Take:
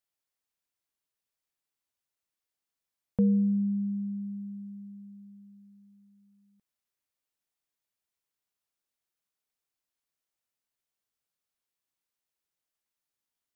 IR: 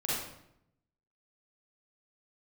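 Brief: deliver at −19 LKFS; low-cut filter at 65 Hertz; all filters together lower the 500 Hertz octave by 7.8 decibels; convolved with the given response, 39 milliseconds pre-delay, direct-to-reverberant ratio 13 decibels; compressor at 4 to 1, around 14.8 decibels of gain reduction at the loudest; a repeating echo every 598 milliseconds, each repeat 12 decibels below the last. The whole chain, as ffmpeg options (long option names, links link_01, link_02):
-filter_complex "[0:a]highpass=65,equalizer=frequency=500:width_type=o:gain=-8,acompressor=threshold=-41dB:ratio=4,aecho=1:1:598|1196|1794:0.251|0.0628|0.0157,asplit=2[link_01][link_02];[1:a]atrim=start_sample=2205,adelay=39[link_03];[link_02][link_03]afir=irnorm=-1:irlink=0,volume=-19.5dB[link_04];[link_01][link_04]amix=inputs=2:normalize=0,volume=24.5dB"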